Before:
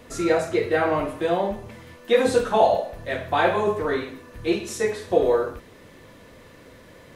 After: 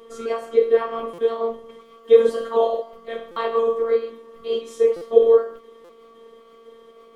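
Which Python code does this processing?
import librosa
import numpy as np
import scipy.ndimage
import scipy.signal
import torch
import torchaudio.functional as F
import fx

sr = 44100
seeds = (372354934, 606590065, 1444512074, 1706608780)

y = fx.pitch_trill(x, sr, semitones=2.0, every_ms=256)
y = fx.dmg_buzz(y, sr, base_hz=400.0, harmonics=3, level_db=-52.0, tilt_db=-4, odd_only=False)
y = fx.small_body(y, sr, hz=(460.0, 1100.0, 3200.0), ring_ms=30, db=18)
y = fx.robotise(y, sr, hz=228.0)
y = fx.buffer_glitch(y, sr, at_s=(1.13, 3.31, 4.96, 5.84), block=256, repeats=8)
y = y * 10.0 ** (-9.0 / 20.0)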